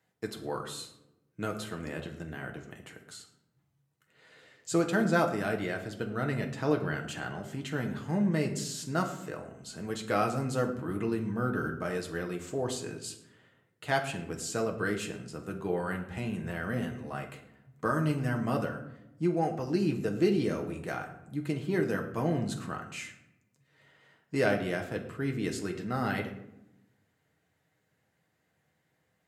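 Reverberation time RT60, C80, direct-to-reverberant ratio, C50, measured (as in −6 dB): 0.90 s, 12.0 dB, 2.5 dB, 9.5 dB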